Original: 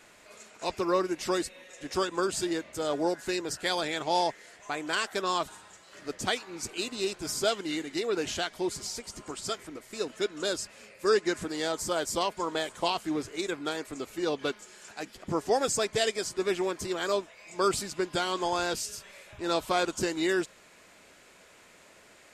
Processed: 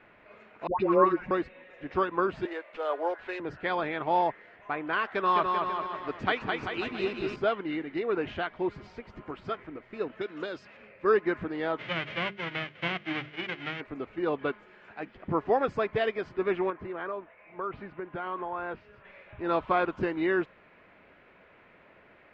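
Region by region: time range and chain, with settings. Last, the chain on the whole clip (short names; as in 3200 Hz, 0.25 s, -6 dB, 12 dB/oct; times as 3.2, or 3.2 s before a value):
0.67–1.31 comb 5.5 ms, depth 54% + dispersion highs, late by 0.131 s, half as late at 850 Hz
2.45–3.4 HPF 450 Hz 24 dB/oct + careless resampling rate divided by 4×, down none, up zero stuff
5.05–7.36 high shelf 2400 Hz +7.5 dB + bouncing-ball echo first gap 0.21 s, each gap 0.85×, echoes 5
10.21–10.77 HPF 130 Hz + bell 5700 Hz +10.5 dB 1.8 oct + compressor 5:1, threshold -27 dBFS
11.77–13.8 spectral whitening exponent 0.1 + speaker cabinet 120–7200 Hz, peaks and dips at 130 Hz +10 dB, 540 Hz +5 dB, 960 Hz -9 dB, 2100 Hz +7 dB, 3100 Hz +8 dB + notches 50/100/150/200/250/300/350/400 Hz
16.7–19.05 LPF 2100 Hz + compressor, threshold -30 dBFS + low shelf 380 Hz -5.5 dB
whole clip: dynamic EQ 1100 Hz, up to +5 dB, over -43 dBFS, Q 2.5; LPF 2500 Hz 24 dB/oct; bell 110 Hz +2.5 dB 2 oct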